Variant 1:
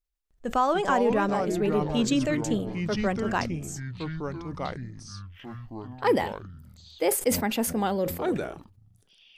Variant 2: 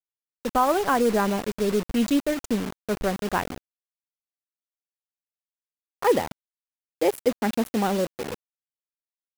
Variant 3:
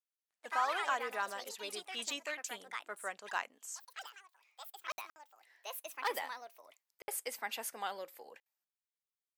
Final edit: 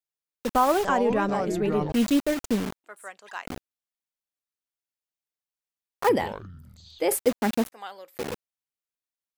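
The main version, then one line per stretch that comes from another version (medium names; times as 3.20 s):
2
0.85–1.92 s: from 1
2.84–3.46 s: from 3
6.09–7.18 s: from 1
7.72–8.18 s: from 3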